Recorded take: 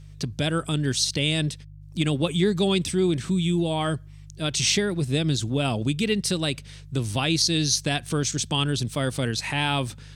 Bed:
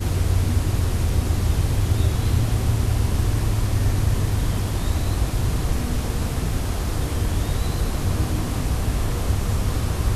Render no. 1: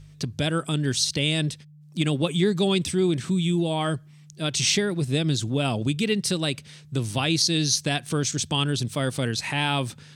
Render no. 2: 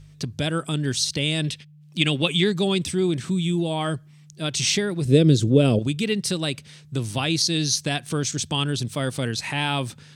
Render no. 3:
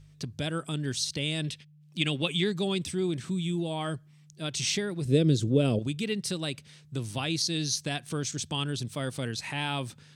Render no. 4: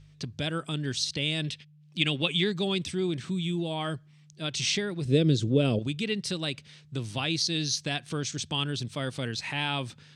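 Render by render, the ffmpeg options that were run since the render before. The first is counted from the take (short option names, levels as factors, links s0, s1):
-af "bandreject=f=50:t=h:w=4,bandreject=f=100:t=h:w=4"
-filter_complex "[0:a]asettb=1/sr,asplit=3[s0][s1][s2];[s0]atrim=end=1.444[s3];[s1]atrim=start=1.44:end=2.52,asetpts=PTS-STARTPTS,afade=t=in:d=0.004:c=qsin,afade=t=out:st=1.076:d=0.004:c=qsin,equalizer=f=2800:t=o:w=1.2:g=10.5[s4];[s2]atrim=start=2.516[s5];[s3][s4]acrossfade=d=0.004:c1=hsin:c2=qsin[s6];[s6][s5]acrossfade=d=0.004:c1=qsin:c2=hsin,asettb=1/sr,asplit=3[s7][s8][s9];[s7]atrim=end=5.054[s10];[s8]atrim=start=5.05:end=5.79,asetpts=PTS-STARTPTS,afade=t=in:d=0.004:c=qsin,afade=t=out:st=0.736:d=0.004:c=qsin,lowshelf=f=630:t=q:w=3:g=7[s11];[s9]atrim=start=5.786[s12];[s10][s11]acrossfade=d=0.004:c1=hsin:c2=qsin[s13];[s13][s12]acrossfade=d=0.004:c1=qsin:c2=hsin"
-af "volume=0.447"
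-af "lowpass=3600,aemphasis=mode=production:type=75kf"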